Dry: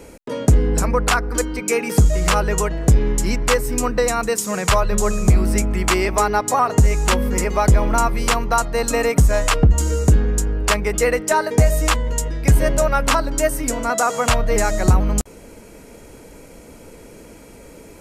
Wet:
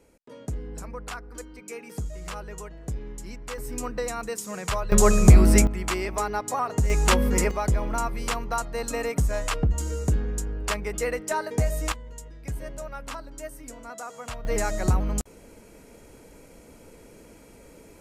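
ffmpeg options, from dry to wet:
-af "asetnsamples=n=441:p=0,asendcmd='3.58 volume volume -11.5dB;4.92 volume volume 1.5dB;5.67 volume volume -10dB;6.9 volume volume -2.5dB;7.51 volume volume -10dB;11.92 volume volume -19.5dB;14.45 volume volume -8dB',volume=-19dB"

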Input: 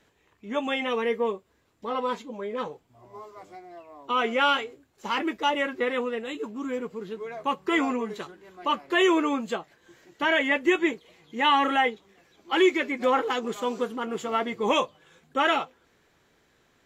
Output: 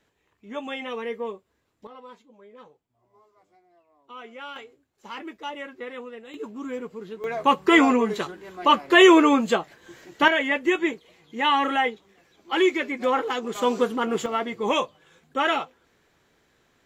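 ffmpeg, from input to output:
-af "asetnsamples=n=441:p=0,asendcmd='1.87 volume volume -16.5dB;4.56 volume volume -9.5dB;6.34 volume volume -1.5dB;7.24 volume volume 8dB;10.28 volume volume 0dB;13.55 volume volume 6dB;14.26 volume volume 0dB',volume=-5dB"

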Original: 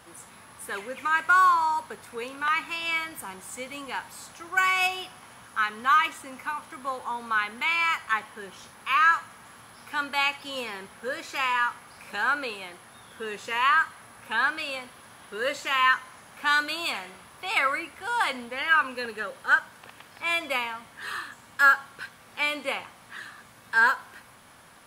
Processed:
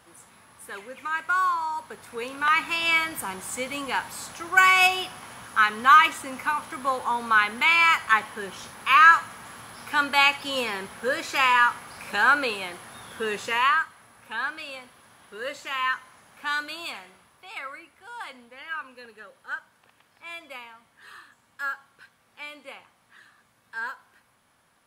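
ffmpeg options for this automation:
-af "volume=6dB,afade=t=in:st=1.71:d=1.13:silence=0.298538,afade=t=out:st=13.37:d=0.49:silence=0.281838,afade=t=out:st=16.82:d=0.68:silence=0.421697"

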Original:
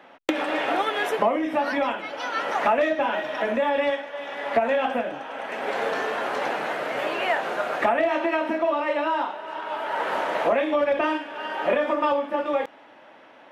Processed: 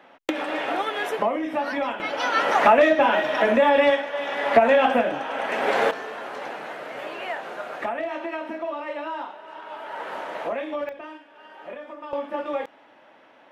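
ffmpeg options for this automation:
-af "asetnsamples=n=441:p=0,asendcmd='2 volume volume 5.5dB;5.91 volume volume -7dB;10.89 volume volume -15.5dB;12.13 volume volume -3.5dB',volume=-2dB"

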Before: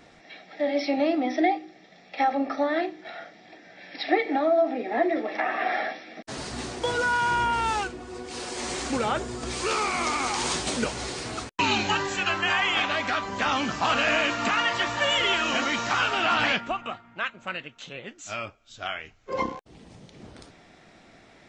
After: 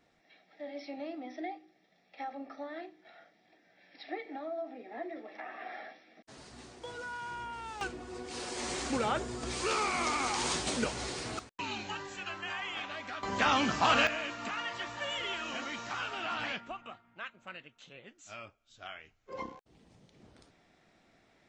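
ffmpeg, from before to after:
-af "asetnsamples=n=441:p=0,asendcmd='7.81 volume volume -5dB;11.39 volume volume -14.5dB;13.23 volume volume -2dB;14.07 volume volume -13dB',volume=-17dB"

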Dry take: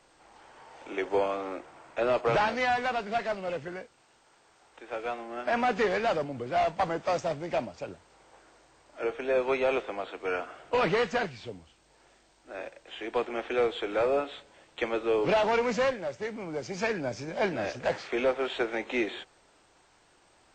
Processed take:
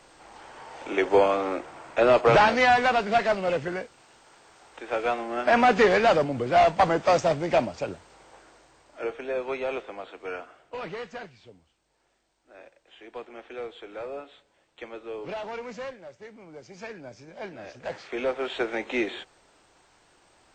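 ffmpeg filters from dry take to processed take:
-af "volume=19.5dB,afade=t=out:st=7.76:d=1.59:silence=0.281838,afade=t=out:st=10.28:d=0.41:silence=0.473151,afade=t=in:st=17.65:d=1.05:silence=0.251189"

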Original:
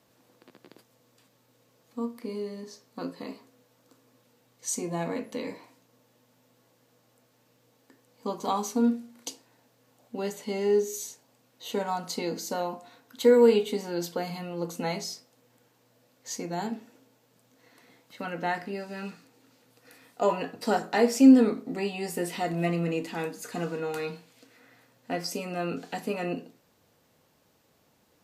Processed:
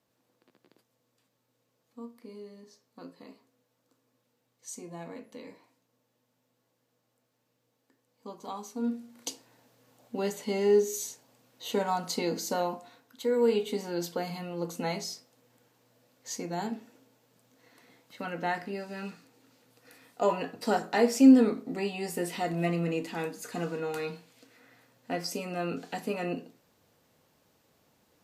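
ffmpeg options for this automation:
-af "volume=9.5dB,afade=t=in:st=8.76:d=0.53:silence=0.251189,afade=t=out:st=12.67:d=0.6:silence=0.281838,afade=t=in:st=13.27:d=0.53:silence=0.375837"

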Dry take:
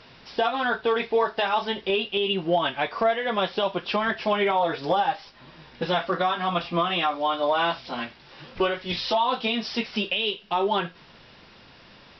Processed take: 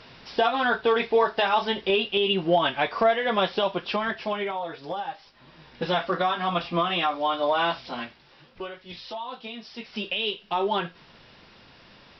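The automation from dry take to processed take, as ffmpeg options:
-af "volume=20.5dB,afade=t=out:st=3.41:d=1.21:silence=0.298538,afade=t=in:st=5.14:d=0.75:silence=0.375837,afade=t=out:st=7.81:d=0.7:silence=0.266073,afade=t=in:st=9.77:d=0.44:silence=0.298538"

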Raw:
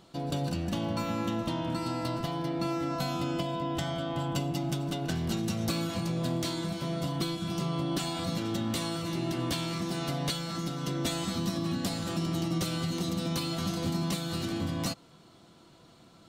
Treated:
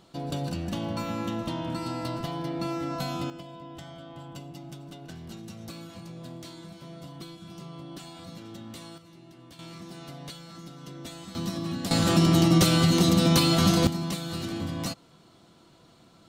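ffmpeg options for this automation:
-af "asetnsamples=n=441:p=0,asendcmd='3.3 volume volume -11dB;8.98 volume volume -19dB;9.59 volume volume -10dB;11.35 volume volume -0.5dB;11.91 volume volume 11dB;13.87 volume volume 0dB',volume=0dB"

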